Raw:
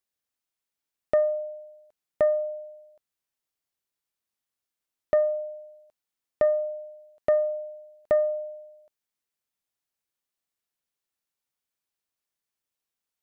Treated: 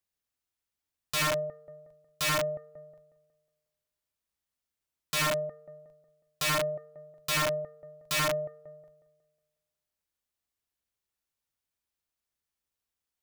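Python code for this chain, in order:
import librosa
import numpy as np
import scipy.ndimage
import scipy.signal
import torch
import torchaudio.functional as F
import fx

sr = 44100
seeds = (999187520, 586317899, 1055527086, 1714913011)

y = fx.octave_divider(x, sr, octaves=2, level_db=3.0)
y = fx.echo_wet_lowpass(y, sr, ms=182, feedback_pct=41, hz=1700.0, wet_db=-12.5)
y = (np.mod(10.0 ** (21.5 / 20.0) * y + 1.0, 2.0) - 1.0) / 10.0 ** (21.5 / 20.0)
y = y * 10.0 ** (-1.5 / 20.0)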